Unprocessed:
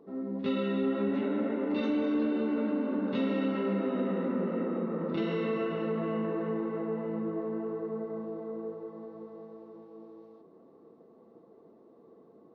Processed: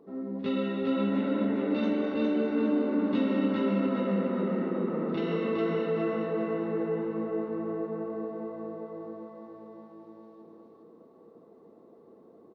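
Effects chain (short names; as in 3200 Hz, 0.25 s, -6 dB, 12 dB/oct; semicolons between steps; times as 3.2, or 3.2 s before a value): feedback echo 0.41 s, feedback 36%, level -3 dB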